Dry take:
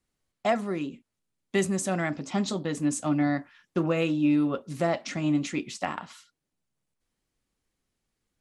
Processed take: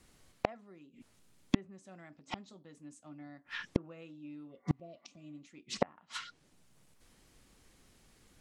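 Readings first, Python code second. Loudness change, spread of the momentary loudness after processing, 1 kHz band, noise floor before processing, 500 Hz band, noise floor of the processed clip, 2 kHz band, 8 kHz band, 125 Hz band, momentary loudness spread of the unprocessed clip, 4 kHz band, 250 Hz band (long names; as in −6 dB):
−12.5 dB, 18 LU, −12.0 dB, −83 dBFS, −13.5 dB, −68 dBFS, −12.0 dB, −16.0 dB, −10.5 dB, 9 LU, −7.0 dB, −14.5 dB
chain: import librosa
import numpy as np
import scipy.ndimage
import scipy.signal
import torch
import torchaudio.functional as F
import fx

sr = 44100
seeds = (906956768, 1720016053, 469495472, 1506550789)

y = fx.spec_repair(x, sr, seeds[0], start_s=4.53, length_s=0.82, low_hz=730.0, high_hz=2300.0, source='after')
y = fx.gate_flip(y, sr, shuts_db=-28.0, range_db=-42)
y = fx.env_lowpass_down(y, sr, base_hz=1800.0, full_db=-48.5)
y = F.gain(torch.from_numpy(y), 17.0).numpy()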